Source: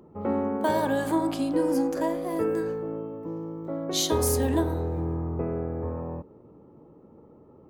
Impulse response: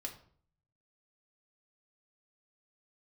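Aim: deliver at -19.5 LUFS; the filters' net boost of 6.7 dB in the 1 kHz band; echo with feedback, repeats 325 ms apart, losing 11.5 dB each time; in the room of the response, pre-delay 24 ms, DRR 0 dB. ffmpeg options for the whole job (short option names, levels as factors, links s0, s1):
-filter_complex "[0:a]equalizer=f=1000:t=o:g=7.5,aecho=1:1:325|650|975:0.266|0.0718|0.0194,asplit=2[s0][s1];[1:a]atrim=start_sample=2205,adelay=24[s2];[s1][s2]afir=irnorm=-1:irlink=0,volume=1.26[s3];[s0][s3]amix=inputs=2:normalize=0,volume=1.33"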